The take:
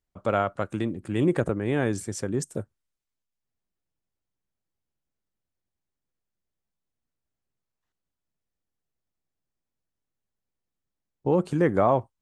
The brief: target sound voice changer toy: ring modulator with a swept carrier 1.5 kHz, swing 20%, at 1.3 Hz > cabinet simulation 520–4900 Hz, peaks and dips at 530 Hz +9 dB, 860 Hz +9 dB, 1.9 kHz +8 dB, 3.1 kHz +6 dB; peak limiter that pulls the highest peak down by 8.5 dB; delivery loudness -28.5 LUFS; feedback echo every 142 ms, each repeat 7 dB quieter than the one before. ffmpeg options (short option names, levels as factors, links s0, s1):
-af "alimiter=limit=0.133:level=0:latency=1,aecho=1:1:142|284|426|568|710:0.447|0.201|0.0905|0.0407|0.0183,aeval=exprs='val(0)*sin(2*PI*1500*n/s+1500*0.2/1.3*sin(2*PI*1.3*n/s))':c=same,highpass=520,equalizer=f=530:t=q:w=4:g=9,equalizer=f=860:t=q:w=4:g=9,equalizer=f=1900:t=q:w=4:g=8,equalizer=f=3100:t=q:w=4:g=6,lowpass=f=4900:w=0.5412,lowpass=f=4900:w=1.3066,volume=0.668"